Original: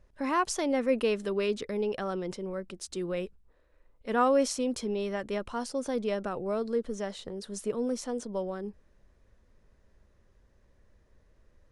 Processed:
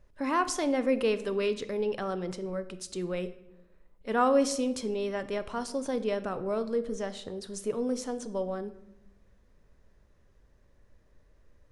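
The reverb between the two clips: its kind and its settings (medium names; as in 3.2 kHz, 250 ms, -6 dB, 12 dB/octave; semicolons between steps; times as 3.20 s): simulated room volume 320 m³, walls mixed, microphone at 0.33 m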